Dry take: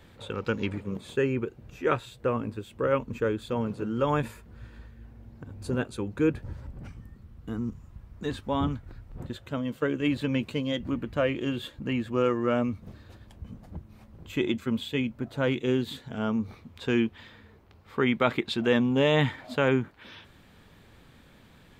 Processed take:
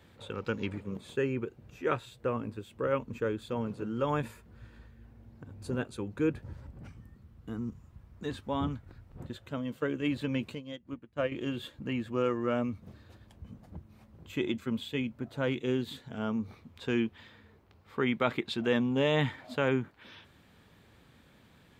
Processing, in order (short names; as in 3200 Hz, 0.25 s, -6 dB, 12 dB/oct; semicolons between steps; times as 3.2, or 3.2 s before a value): HPF 54 Hz; 10.55–11.32 upward expander 2.5:1, over -37 dBFS; gain -4.5 dB